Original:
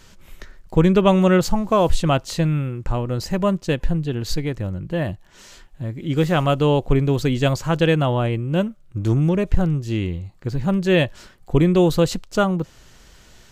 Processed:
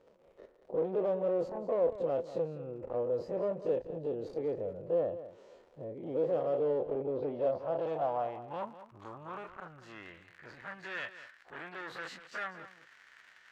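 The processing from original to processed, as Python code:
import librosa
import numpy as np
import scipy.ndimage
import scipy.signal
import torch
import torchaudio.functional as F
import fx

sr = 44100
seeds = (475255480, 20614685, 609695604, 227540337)

p1 = fx.spec_dilate(x, sr, span_ms=60)
p2 = fx.peak_eq(p1, sr, hz=1600.0, db=-6.5, octaves=0.32)
p3 = fx.rider(p2, sr, range_db=10, speed_s=0.5)
p4 = p2 + (p3 * librosa.db_to_amplitude(1.0))
p5 = fx.dmg_crackle(p4, sr, seeds[0], per_s=85.0, level_db=-19.0)
p6 = fx.moving_average(p5, sr, points=6, at=(6.94, 7.87))
p7 = 10.0 ** (-12.0 / 20.0) * np.tanh(p6 / 10.0 ** (-12.0 / 20.0))
p8 = fx.filter_sweep_bandpass(p7, sr, from_hz=500.0, to_hz=1700.0, start_s=7.19, end_s=10.15, q=4.4)
p9 = p8 + fx.echo_single(p8, sr, ms=197, db=-13.5, dry=0)
y = p9 * librosa.db_to_amplitude(-8.0)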